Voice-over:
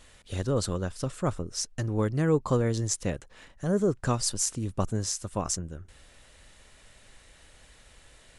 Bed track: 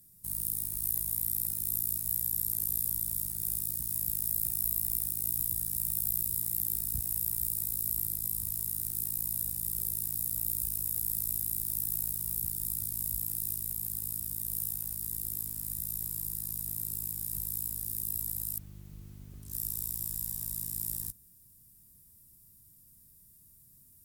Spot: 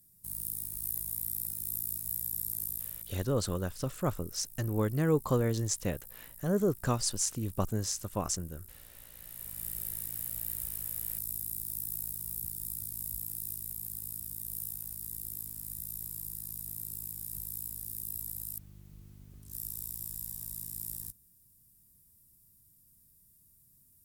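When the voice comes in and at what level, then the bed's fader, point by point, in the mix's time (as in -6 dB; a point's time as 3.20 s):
2.80 s, -3.0 dB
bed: 2.64 s -4 dB
3.41 s -19.5 dB
9.11 s -19.5 dB
9.62 s -4.5 dB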